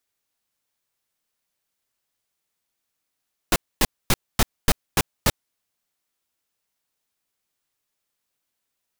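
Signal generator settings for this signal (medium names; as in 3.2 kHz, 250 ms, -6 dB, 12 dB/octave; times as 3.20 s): noise bursts pink, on 0.04 s, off 0.25 s, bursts 7, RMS -16.5 dBFS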